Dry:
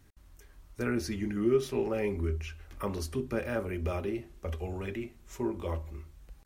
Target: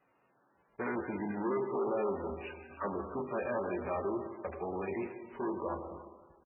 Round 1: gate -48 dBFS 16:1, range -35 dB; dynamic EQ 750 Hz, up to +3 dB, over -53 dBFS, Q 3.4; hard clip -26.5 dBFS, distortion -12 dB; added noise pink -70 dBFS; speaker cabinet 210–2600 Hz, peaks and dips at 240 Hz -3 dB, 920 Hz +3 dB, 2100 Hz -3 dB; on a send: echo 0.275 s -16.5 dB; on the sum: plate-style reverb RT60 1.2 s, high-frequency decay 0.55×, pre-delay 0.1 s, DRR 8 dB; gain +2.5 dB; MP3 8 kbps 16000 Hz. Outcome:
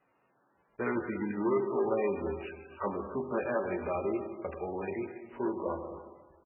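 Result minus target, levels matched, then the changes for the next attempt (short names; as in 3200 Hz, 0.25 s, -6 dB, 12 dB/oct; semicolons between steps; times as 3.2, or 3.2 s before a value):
hard clip: distortion -5 dB
change: hard clip -32.5 dBFS, distortion -6 dB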